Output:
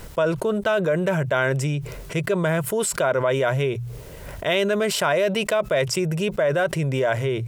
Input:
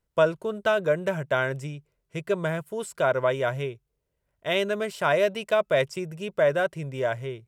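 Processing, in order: hum notches 60/120 Hz; in parallel at 0 dB: peak limiter -17.5 dBFS, peak gain reduction 8 dB; on the sum: level flattener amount 70%; trim -5.5 dB

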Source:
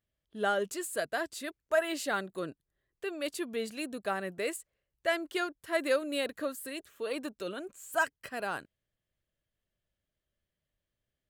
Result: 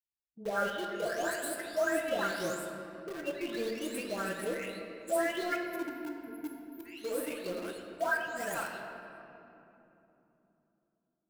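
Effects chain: delay that grows with frequency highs late, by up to 599 ms; gate -49 dBFS, range -22 dB; spectral selection erased 5.57–6.86 s, 460–11000 Hz; in parallel at -6 dB: bit crusher 6-bit; on the sum: simulated room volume 150 m³, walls hard, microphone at 0.33 m; trim -4 dB

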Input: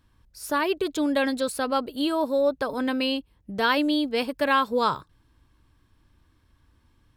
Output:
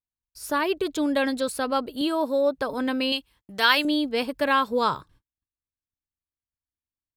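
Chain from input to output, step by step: 2.01–2.58 s: high-pass 130 Hz 12 dB/octave; 3.12–3.85 s: tilt shelf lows -8.5 dB, about 870 Hz; gate -53 dBFS, range -39 dB

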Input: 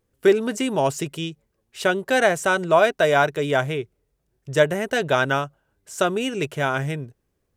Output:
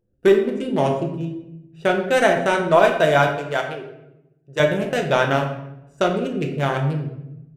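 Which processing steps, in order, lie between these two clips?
local Wiener filter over 41 samples; 3.27–4.60 s: high-pass 730 Hz 6 dB/octave; simulated room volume 290 m³, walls mixed, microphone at 0.83 m; trim +1 dB

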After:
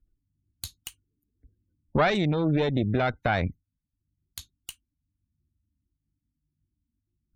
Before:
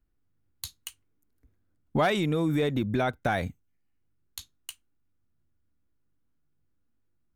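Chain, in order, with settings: spectral gate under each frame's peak -30 dB strong; bass shelf 120 Hz +7.5 dB; Chebyshev shaper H 2 -6 dB, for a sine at -14 dBFS

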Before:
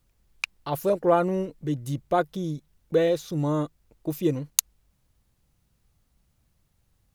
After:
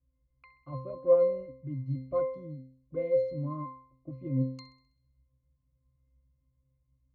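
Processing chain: pitch-class resonator C, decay 0.53 s; level-controlled noise filter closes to 1.6 kHz, open at -34 dBFS; thinning echo 65 ms, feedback 58%, high-pass 750 Hz, level -21 dB; trim +8.5 dB

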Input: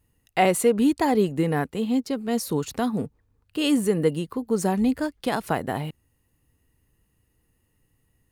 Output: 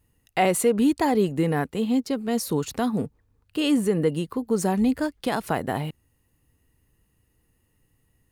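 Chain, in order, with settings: 3.60–4.16 s: treble shelf 5.2 kHz -5 dB; in parallel at -1 dB: peak limiter -16 dBFS, peak gain reduction 7.5 dB; on the sum: trim -4.5 dB

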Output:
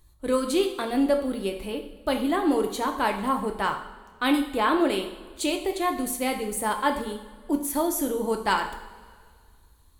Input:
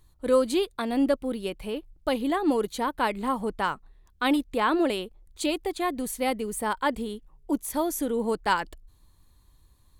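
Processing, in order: treble shelf 8.7 kHz +4 dB; reverberation, pre-delay 3 ms, DRR 3.5 dB

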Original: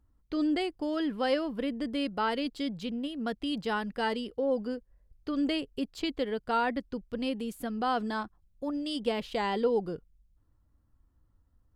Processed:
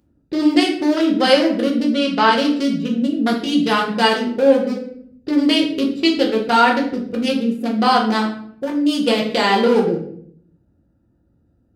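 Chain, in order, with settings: local Wiener filter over 41 samples; in parallel at 0 dB: compression, threshold -42 dBFS, peak gain reduction 17.5 dB; on the sum: high-pass 150 Hz 12 dB/octave; treble shelf 2.4 kHz +11 dB; 1.84–2.35 s: low-pass 6.4 kHz 12 dB/octave; simulated room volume 100 m³, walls mixed, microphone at 0.91 m; trim +9 dB

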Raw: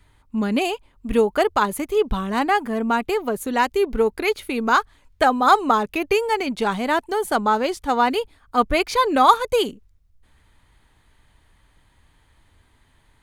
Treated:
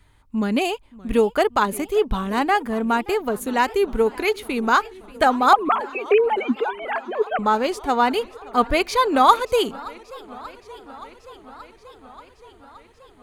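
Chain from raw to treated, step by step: 5.53–7.39 s: formants replaced by sine waves; modulated delay 578 ms, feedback 76%, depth 186 cents, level -21.5 dB

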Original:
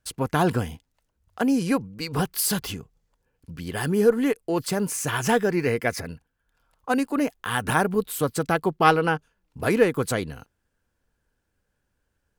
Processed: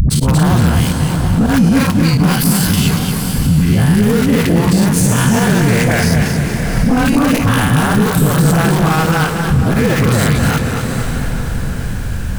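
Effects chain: every event in the spectrogram widened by 120 ms; in parallel at -9 dB: companded quantiser 2-bit; 6.07–6.96 s: on the sum: tone controls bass +3 dB, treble -5 dB; phase dispersion highs, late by 99 ms, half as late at 440 Hz; upward compressor, threshold -42 dBFS; slow attack 110 ms; compression 12:1, threshold -35 dBFS, peak gain reduction 30.5 dB; resonant low shelf 260 Hz +10 dB, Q 1.5; on a send: echo that smears into a reverb 762 ms, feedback 41%, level -13 dB; on the sum: loudness maximiser +30.5 dB; modulated delay 233 ms, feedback 47%, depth 96 cents, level -6 dB; trim -4.5 dB

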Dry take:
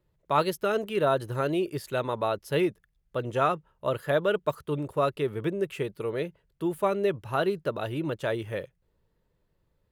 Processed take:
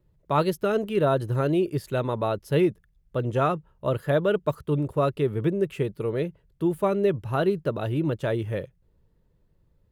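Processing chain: bass shelf 380 Hz +10.5 dB; trim -1.5 dB

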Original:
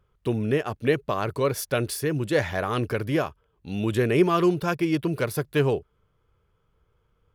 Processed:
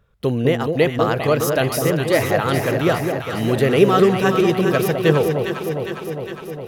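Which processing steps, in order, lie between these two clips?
echo whose repeats swap between lows and highs 224 ms, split 810 Hz, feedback 82%, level -4.5 dB; tape speed +10%; trim +5.5 dB

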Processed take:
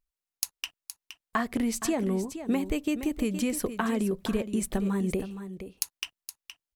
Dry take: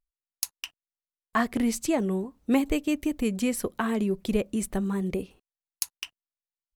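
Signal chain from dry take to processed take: compression, threshold -26 dBFS, peak gain reduction 8.5 dB; delay 468 ms -11 dB; trim +2 dB

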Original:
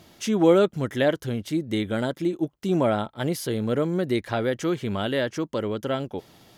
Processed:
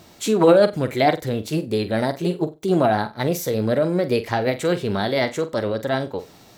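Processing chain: formant shift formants +3 st; flutter echo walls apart 7.8 m, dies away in 0.23 s; trim +4 dB

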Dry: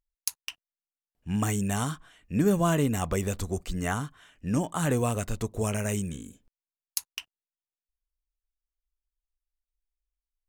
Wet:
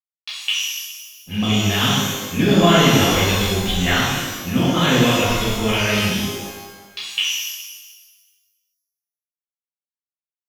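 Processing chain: level-controlled noise filter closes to 2.5 kHz, open at -23 dBFS; resonant low-pass 3.4 kHz, resonance Q 7.3; peaking EQ 2.3 kHz +4 dB 1.3 oct; 0.49–1.56 s: touch-sensitive flanger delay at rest 8.1 ms, full sweep at -22 dBFS; crossover distortion -48 dBFS; pitch-shifted reverb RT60 1.3 s, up +12 st, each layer -8 dB, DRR -9.5 dB

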